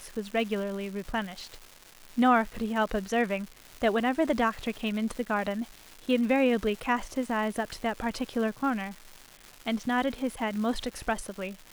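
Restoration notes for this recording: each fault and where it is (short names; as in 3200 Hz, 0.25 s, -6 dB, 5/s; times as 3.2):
crackle 490/s -37 dBFS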